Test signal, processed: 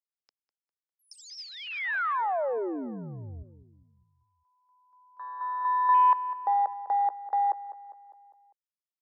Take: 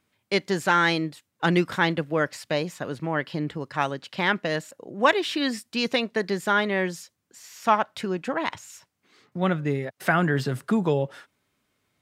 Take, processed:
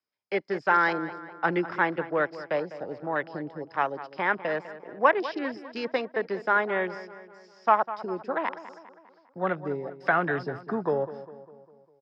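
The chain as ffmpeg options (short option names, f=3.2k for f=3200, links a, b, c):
-filter_complex "[0:a]afwtdn=0.0282,lowpass=f=5.1k:t=q:w=15,acrossover=split=370|880|2500[a][b][c][d];[d]acompressor=threshold=-38dB:ratio=6[e];[a][b][c][e]amix=inputs=4:normalize=0,acrossover=split=350 2100:gain=0.224 1 0.251[f][g][h];[f][g][h]amix=inputs=3:normalize=0,asplit=2[i][j];[j]adelay=201,lowpass=f=3.1k:p=1,volume=-14dB,asplit=2[k][l];[l]adelay=201,lowpass=f=3.1k:p=1,volume=0.53,asplit=2[m][n];[n]adelay=201,lowpass=f=3.1k:p=1,volume=0.53,asplit=2[o][p];[p]adelay=201,lowpass=f=3.1k:p=1,volume=0.53,asplit=2[q][r];[r]adelay=201,lowpass=f=3.1k:p=1,volume=0.53[s];[i][k][m][o][q][s]amix=inputs=6:normalize=0"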